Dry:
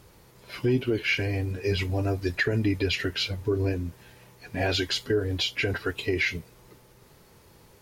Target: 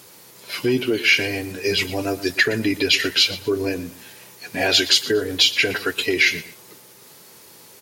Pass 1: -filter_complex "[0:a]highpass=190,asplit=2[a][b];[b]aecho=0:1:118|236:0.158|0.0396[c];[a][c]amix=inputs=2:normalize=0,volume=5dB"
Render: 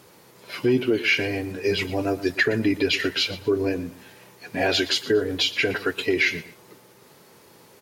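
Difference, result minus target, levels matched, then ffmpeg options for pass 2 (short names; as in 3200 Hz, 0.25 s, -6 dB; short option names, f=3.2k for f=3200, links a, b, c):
4000 Hz band -3.0 dB
-filter_complex "[0:a]highpass=190,highshelf=f=2.8k:g=11.5,asplit=2[a][b];[b]aecho=0:1:118|236:0.158|0.0396[c];[a][c]amix=inputs=2:normalize=0,volume=5dB"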